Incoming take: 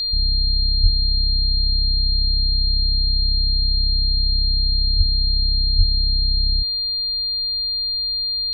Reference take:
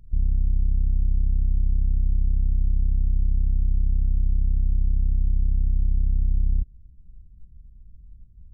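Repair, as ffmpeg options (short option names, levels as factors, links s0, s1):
-filter_complex "[0:a]bandreject=f=4200:w=30,asplit=3[s0][s1][s2];[s0]afade=t=out:st=0.82:d=0.02[s3];[s1]highpass=f=140:w=0.5412,highpass=f=140:w=1.3066,afade=t=in:st=0.82:d=0.02,afade=t=out:st=0.94:d=0.02[s4];[s2]afade=t=in:st=0.94:d=0.02[s5];[s3][s4][s5]amix=inputs=3:normalize=0,asplit=3[s6][s7][s8];[s6]afade=t=out:st=4.97:d=0.02[s9];[s7]highpass=f=140:w=0.5412,highpass=f=140:w=1.3066,afade=t=in:st=4.97:d=0.02,afade=t=out:st=5.09:d=0.02[s10];[s8]afade=t=in:st=5.09:d=0.02[s11];[s9][s10][s11]amix=inputs=3:normalize=0,asplit=3[s12][s13][s14];[s12]afade=t=out:st=5.77:d=0.02[s15];[s13]highpass=f=140:w=0.5412,highpass=f=140:w=1.3066,afade=t=in:st=5.77:d=0.02,afade=t=out:st=5.89:d=0.02[s16];[s14]afade=t=in:st=5.89:d=0.02[s17];[s15][s16][s17]amix=inputs=3:normalize=0,agate=range=0.0891:threshold=0.178"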